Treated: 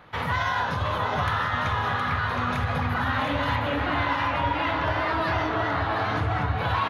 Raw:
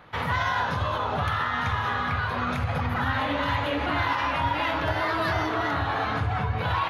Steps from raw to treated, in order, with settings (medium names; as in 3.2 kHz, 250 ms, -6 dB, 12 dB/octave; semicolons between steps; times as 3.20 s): 3.56–6.05 s: low-pass 3.9 kHz 6 dB/octave; delay 717 ms -6 dB